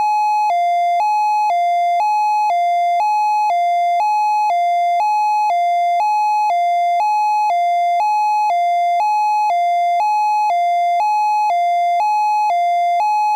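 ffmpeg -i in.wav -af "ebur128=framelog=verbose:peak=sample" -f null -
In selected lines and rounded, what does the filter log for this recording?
Integrated loudness:
  I:         -15.8 LUFS
  Threshold: -25.8 LUFS
Loudness range:
  LRA:         0.0 LU
  Threshold: -35.8 LUFS
  LRA low:   -15.8 LUFS
  LRA high:  -15.8 LUFS
Sample peak:
  Peak:      -10.7 dBFS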